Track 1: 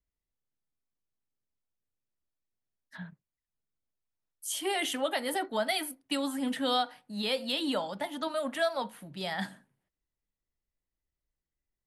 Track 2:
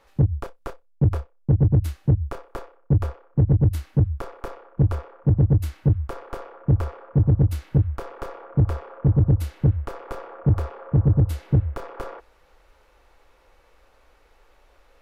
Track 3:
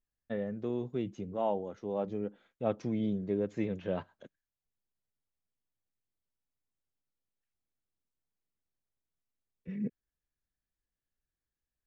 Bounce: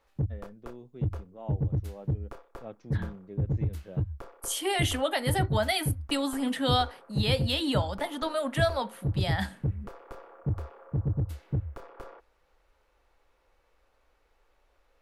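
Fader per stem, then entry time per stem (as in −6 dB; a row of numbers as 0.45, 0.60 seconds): +2.5, −11.0, −11.5 decibels; 0.00, 0.00, 0.00 seconds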